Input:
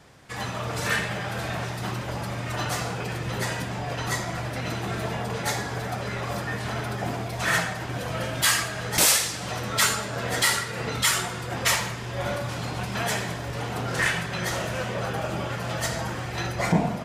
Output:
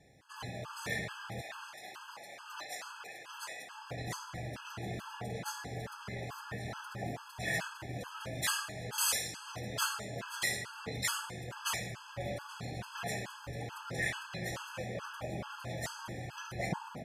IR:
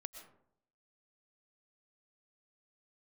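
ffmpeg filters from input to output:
-filter_complex "[0:a]asettb=1/sr,asplit=3[link_01][link_02][link_03];[link_01]atrim=end=1.414[link_04];[link_02]atrim=start=1.41:end=3.78,asetpts=PTS-STARTPTS,afade=type=in:duration=0.004:curve=qsin,afade=type=out:start_time=2.366:duration=0.004:curve=qsin,highpass=740[link_05];[link_03]atrim=start=3.776[link_06];[link_04][link_05]acrossfade=duration=0.004:curve1=hsin:curve2=qsin[link_07];[link_07][link_06]acrossfade=duration=0.004:curve1=qsin:curve2=hsin,afftfilt=real='re*gt(sin(2*PI*2.3*pts/sr)*(1-2*mod(floor(b*sr/1024/850),2)),0)':imag='im*gt(sin(2*PI*2.3*pts/sr)*(1-2*mod(floor(b*sr/1024/850),2)),0)':win_size=1024:overlap=0.75,volume=-9dB"

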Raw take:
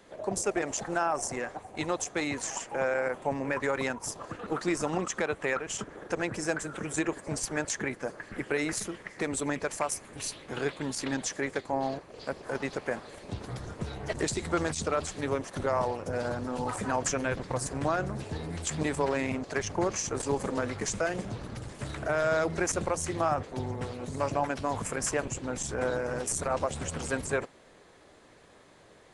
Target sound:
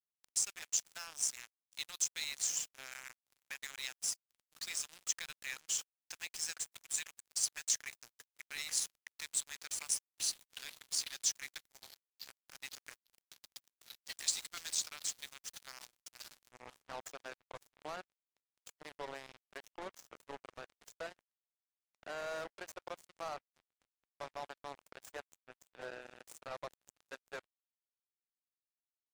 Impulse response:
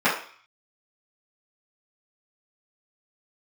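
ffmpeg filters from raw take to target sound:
-af "asetnsamples=nb_out_samples=441:pad=0,asendcmd='16.52 bandpass f 520',bandpass=frequency=4000:width_type=q:width=1.2:csg=0,aderivative,aecho=1:1:492|984|1476|1968:0.075|0.039|0.0203|0.0105,acrusher=bits=7:mix=0:aa=0.5,volume=7dB" -ar 44100 -c:a libvorbis -b:a 128k

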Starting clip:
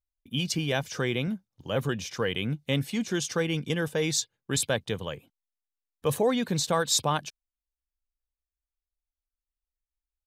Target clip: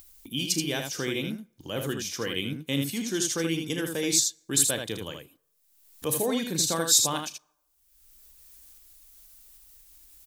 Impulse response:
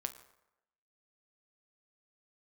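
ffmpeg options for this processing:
-filter_complex "[0:a]equalizer=frequency=310:width_type=o:width=0.59:gain=10,aecho=1:1:36|79:0.251|0.531,acompressor=mode=upward:threshold=-30dB:ratio=2.5,asplit=2[link_01][link_02];[1:a]atrim=start_sample=2205[link_03];[link_02][link_03]afir=irnorm=-1:irlink=0,volume=-14dB[link_04];[link_01][link_04]amix=inputs=2:normalize=0,crystalizer=i=4:c=0,volume=-8.5dB"

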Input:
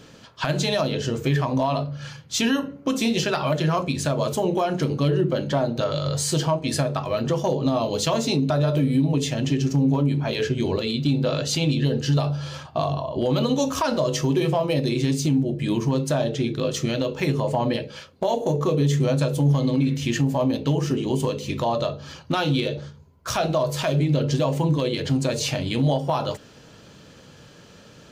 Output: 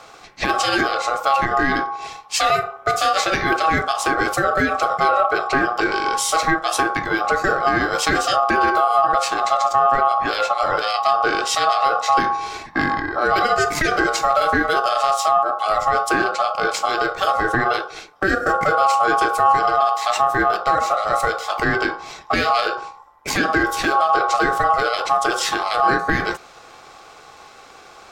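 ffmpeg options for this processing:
ffmpeg -i in.wav -af "aeval=exprs='val(0)*sin(2*PI*960*n/s)':channel_layout=same,acontrast=81" out.wav

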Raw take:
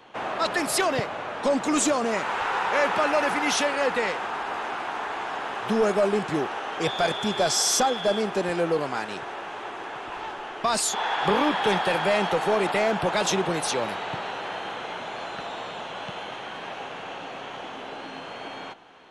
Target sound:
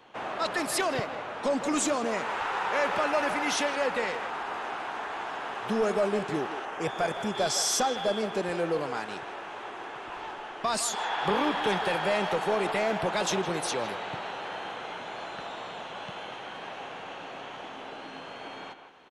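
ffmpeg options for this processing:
ffmpeg -i in.wav -filter_complex "[0:a]asettb=1/sr,asplit=3[link_01][link_02][link_03];[link_01]atrim=end=6.654[link_04];[link_02]atrim=start=6.65:end=7.35,asetpts=PTS-STARTPTS,afade=type=in:duration=0.004:curve=qsin,afade=type=out:start_time=0.696:duration=0.004:curve=qsin,equalizer=frequency=3900:width_type=o:width=0.65:gain=-11[link_05];[link_03]atrim=start=7.346[link_06];[link_04][link_05]acrossfade=duration=0.004:curve1=hsin:curve2=qsin[link_07];[link_07][link_06]acrossfade=duration=0.004:curve1=qsin:curve2=hsin,asplit=2[link_08][link_09];[link_09]adelay=160,highpass=300,lowpass=3400,asoftclip=type=hard:threshold=-20dB,volume=-9dB[link_10];[link_08][link_10]amix=inputs=2:normalize=0,volume=-4.5dB" out.wav

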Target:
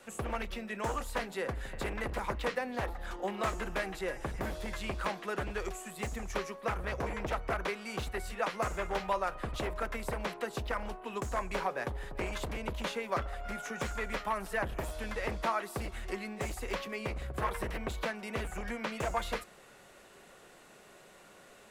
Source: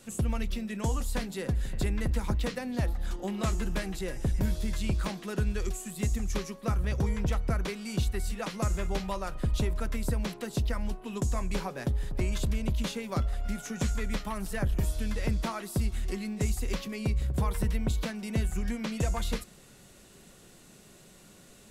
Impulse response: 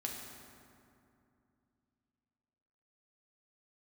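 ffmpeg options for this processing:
-filter_complex "[0:a]aeval=exprs='0.0668*(abs(mod(val(0)/0.0668+3,4)-2)-1)':channel_layout=same,acrossover=split=430 2500:gain=0.158 1 0.251[link_01][link_02][link_03];[link_01][link_02][link_03]amix=inputs=3:normalize=0,volume=5.5dB"

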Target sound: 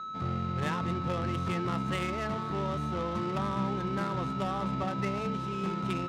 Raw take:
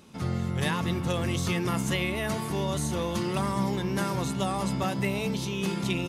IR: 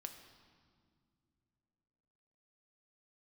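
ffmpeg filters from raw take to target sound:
-af "aeval=exprs='val(0)+0.0316*sin(2*PI*1300*n/s)':channel_layout=same,adynamicsmooth=sensitivity=2.5:basefreq=600,volume=-4dB"

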